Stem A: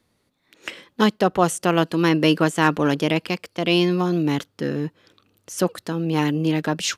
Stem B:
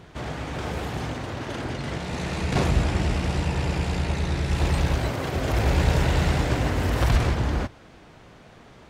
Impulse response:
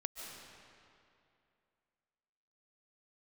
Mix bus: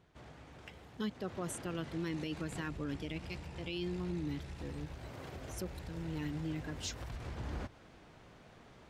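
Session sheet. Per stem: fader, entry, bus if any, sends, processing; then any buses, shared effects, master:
-13.5 dB, 0.00 s, no send, expander on every frequency bin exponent 1.5; peaking EQ 810 Hz -11.5 dB 1.1 oct
1.05 s -20 dB -> 1.38 s -9 dB, 0.00 s, no send, compression 12:1, threshold -26 dBFS, peak gain reduction 12 dB; auto duck -7 dB, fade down 1.55 s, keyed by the first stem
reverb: none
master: peak limiter -29.5 dBFS, peak gain reduction 9 dB

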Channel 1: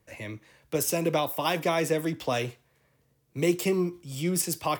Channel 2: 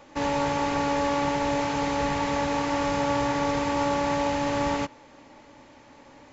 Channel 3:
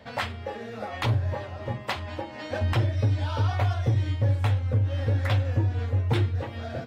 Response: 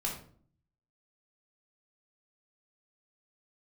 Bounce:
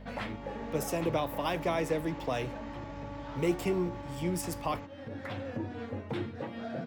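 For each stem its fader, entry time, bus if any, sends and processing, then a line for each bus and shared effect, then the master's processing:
-4.5 dB, 0.00 s, no send, hum 50 Hz, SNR 15 dB
-19.5 dB, 0.00 s, no send, tone controls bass +4 dB, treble -4 dB; peak limiter -21.5 dBFS, peak gain reduction 8.5 dB; level rider gain up to 6 dB
-3.0 dB, 0.00 s, no send, resonant low shelf 120 Hz -13.5 dB, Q 3; peak limiter -22.5 dBFS, peak gain reduction 9 dB; auto duck -10 dB, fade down 1.90 s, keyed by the first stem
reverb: none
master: treble shelf 3.7 kHz -8 dB

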